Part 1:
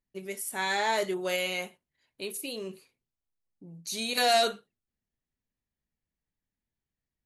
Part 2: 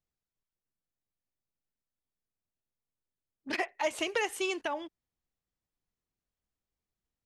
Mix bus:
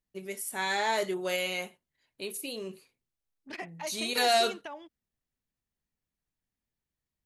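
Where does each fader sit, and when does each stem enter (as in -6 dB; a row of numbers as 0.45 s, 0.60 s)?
-1.0 dB, -8.0 dB; 0.00 s, 0.00 s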